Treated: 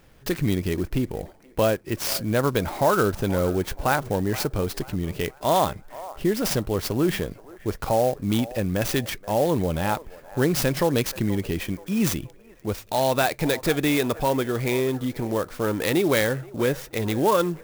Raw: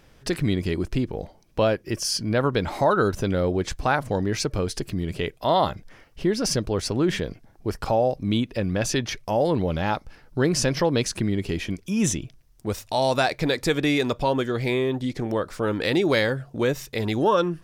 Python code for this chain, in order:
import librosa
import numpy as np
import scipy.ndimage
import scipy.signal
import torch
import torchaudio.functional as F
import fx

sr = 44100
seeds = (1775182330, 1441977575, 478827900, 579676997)

p1 = x + fx.echo_wet_bandpass(x, sr, ms=478, feedback_pct=41, hz=920.0, wet_db=-16.0, dry=0)
y = fx.clock_jitter(p1, sr, seeds[0], jitter_ms=0.034)